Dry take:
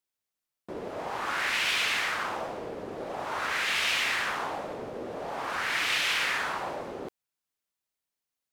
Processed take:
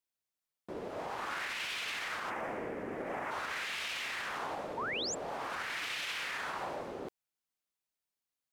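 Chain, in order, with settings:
0:02.30–0:03.31: graphic EQ with 10 bands 250 Hz +5 dB, 2,000 Hz +12 dB, 4,000 Hz −11 dB
brickwall limiter −25.5 dBFS, peak gain reduction 10 dB
0:04.77–0:05.15: sound drawn into the spectrogram rise 850–7,800 Hz −33 dBFS
level −4 dB

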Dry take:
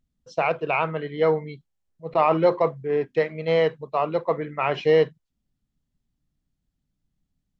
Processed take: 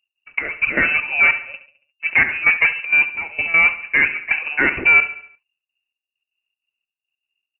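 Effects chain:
leveller curve on the samples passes 3
gate pattern "x.xxx...x.xx" 195 BPM −12 dB
on a send: repeating echo 70 ms, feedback 48%, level −13.5 dB
on the sum: voice inversion scrambler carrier 2,800 Hz

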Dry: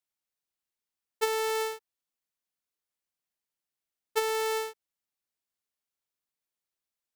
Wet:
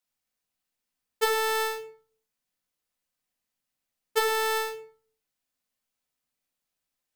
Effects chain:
rectangular room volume 420 cubic metres, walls furnished, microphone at 2 metres
level +2.5 dB

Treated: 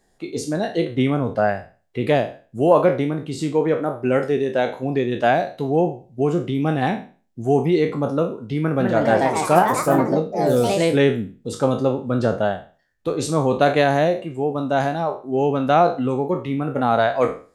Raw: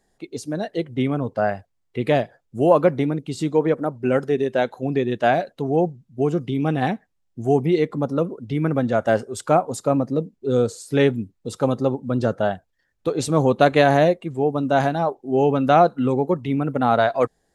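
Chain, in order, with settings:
peak hold with a decay on every bin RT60 0.37 s
speech leveller within 4 dB 2 s
0:08.59–0:11.16: delay with pitch and tempo change per echo 210 ms, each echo +3 semitones, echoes 3
level −1 dB

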